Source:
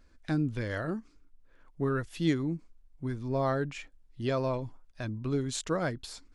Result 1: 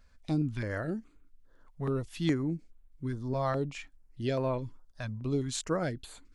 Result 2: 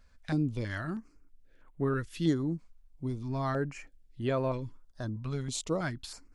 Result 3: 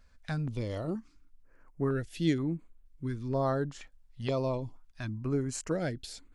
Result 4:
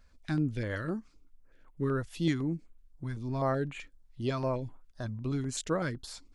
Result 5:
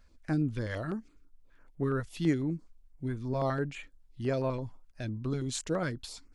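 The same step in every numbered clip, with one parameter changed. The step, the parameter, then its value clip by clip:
stepped notch, rate: 4.8, 3.1, 2.1, 7.9, 12 Hz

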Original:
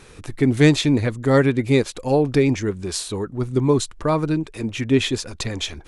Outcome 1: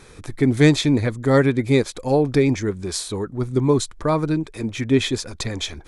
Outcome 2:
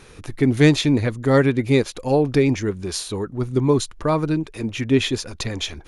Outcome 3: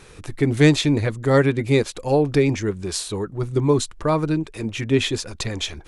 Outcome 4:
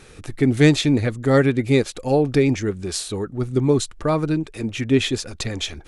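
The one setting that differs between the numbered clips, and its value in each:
notch, frequency: 2800, 7900, 250, 1000 Hz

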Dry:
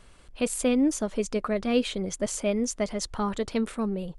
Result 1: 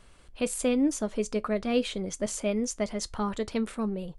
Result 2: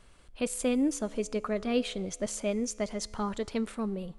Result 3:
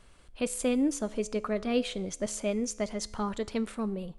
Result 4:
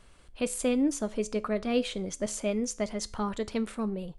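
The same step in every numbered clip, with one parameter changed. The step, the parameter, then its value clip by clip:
resonator, decay: 0.15, 2, 0.91, 0.39 s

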